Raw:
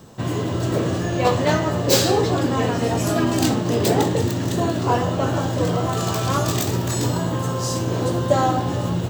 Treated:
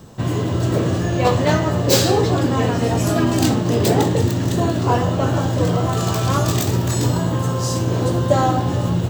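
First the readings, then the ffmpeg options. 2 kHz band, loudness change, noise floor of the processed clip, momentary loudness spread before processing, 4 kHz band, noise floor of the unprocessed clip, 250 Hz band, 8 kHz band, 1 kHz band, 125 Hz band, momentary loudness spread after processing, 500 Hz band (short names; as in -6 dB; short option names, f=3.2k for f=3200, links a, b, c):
+1.0 dB, +2.5 dB, -22 dBFS, 5 LU, +1.0 dB, -25 dBFS, +2.5 dB, +1.0 dB, +1.0 dB, +4.5 dB, 4 LU, +1.5 dB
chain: -af "lowshelf=f=130:g=6.5,volume=1dB"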